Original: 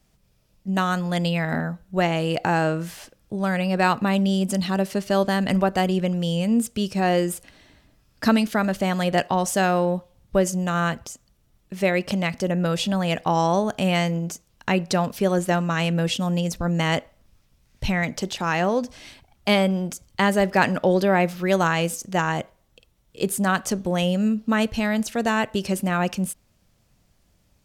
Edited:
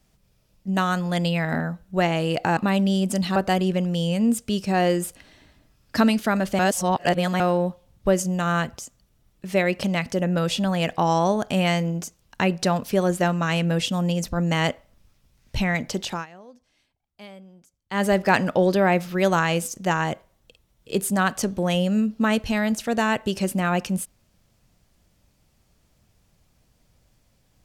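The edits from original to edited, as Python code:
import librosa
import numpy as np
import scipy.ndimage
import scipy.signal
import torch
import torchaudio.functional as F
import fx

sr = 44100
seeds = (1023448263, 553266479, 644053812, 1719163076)

y = fx.edit(x, sr, fx.cut(start_s=2.57, length_s=1.39),
    fx.cut(start_s=4.75, length_s=0.89),
    fx.reverse_span(start_s=8.87, length_s=0.81),
    fx.fade_down_up(start_s=18.39, length_s=1.93, db=-24.0, fade_s=0.15), tone=tone)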